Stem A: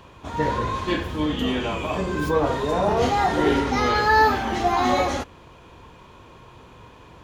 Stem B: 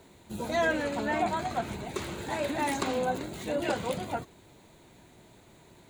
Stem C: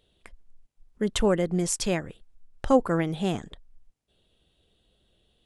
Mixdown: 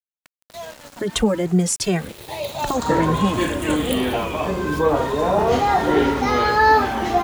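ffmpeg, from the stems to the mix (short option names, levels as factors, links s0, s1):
-filter_complex "[0:a]equalizer=f=600:w=0.35:g=3.5,adelay=2500,volume=0.316[s0];[1:a]highshelf=f=5100:g=11.5,asplit=2[s1][s2];[s2]afreqshift=0.52[s3];[s1][s3]amix=inputs=2:normalize=1,volume=0.668,afade=t=in:st=1.86:d=0.77:silence=0.316228[s4];[2:a]highpass=58,acrossover=split=200[s5][s6];[s6]acompressor=threshold=0.0501:ratio=6[s7];[s5][s7]amix=inputs=2:normalize=0,asplit=2[s8][s9];[s9]adelay=2.1,afreqshift=2.5[s10];[s8][s10]amix=inputs=2:normalize=1,volume=1.12,asplit=2[s11][s12];[s12]apad=whole_len=260169[s13];[s4][s13]sidechaincompress=threshold=0.0126:ratio=4:attack=35:release=217[s14];[s0][s14][s11]amix=inputs=3:normalize=0,dynaudnorm=f=230:g=5:m=3.16,aeval=exprs='val(0)*gte(abs(val(0)),0.0168)':c=same"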